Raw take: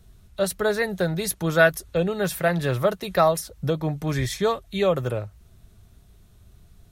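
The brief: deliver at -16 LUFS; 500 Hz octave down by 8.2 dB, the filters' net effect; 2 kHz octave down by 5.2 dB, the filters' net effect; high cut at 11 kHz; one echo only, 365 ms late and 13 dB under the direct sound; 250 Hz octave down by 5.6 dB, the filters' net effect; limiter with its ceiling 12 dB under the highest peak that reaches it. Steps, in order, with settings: low-pass 11 kHz; peaking EQ 250 Hz -8 dB; peaking EQ 500 Hz -8.5 dB; peaking EQ 2 kHz -7 dB; peak limiter -21.5 dBFS; delay 365 ms -13 dB; trim +16.5 dB

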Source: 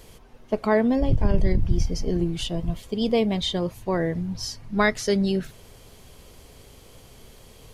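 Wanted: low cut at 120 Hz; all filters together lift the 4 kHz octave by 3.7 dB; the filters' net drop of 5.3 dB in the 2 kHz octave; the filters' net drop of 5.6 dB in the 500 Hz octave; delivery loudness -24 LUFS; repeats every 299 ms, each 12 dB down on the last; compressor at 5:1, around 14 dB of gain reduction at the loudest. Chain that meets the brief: high-pass 120 Hz; peaking EQ 500 Hz -7 dB; peaking EQ 2 kHz -7.5 dB; peaking EQ 4 kHz +7 dB; compression 5:1, threshold -36 dBFS; feedback delay 299 ms, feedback 25%, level -12 dB; trim +15.5 dB

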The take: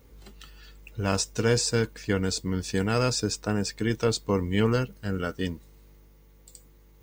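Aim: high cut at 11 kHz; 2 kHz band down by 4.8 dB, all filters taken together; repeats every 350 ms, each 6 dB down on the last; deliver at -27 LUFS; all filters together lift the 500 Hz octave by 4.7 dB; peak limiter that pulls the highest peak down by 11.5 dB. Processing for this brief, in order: low-pass 11 kHz; peaking EQ 500 Hz +5.5 dB; peaking EQ 2 kHz -7.5 dB; peak limiter -20 dBFS; feedback delay 350 ms, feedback 50%, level -6 dB; trim +3 dB

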